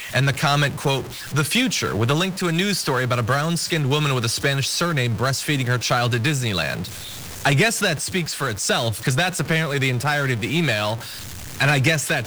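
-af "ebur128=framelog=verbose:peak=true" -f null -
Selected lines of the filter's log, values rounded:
Integrated loudness:
  I:         -20.7 LUFS
  Threshold: -30.9 LUFS
Loudness range:
  LRA:         1.0 LU
  Threshold: -41.0 LUFS
  LRA low:   -21.5 LUFS
  LRA high:  -20.5 LUFS
True peak:
  Peak:       -9.8 dBFS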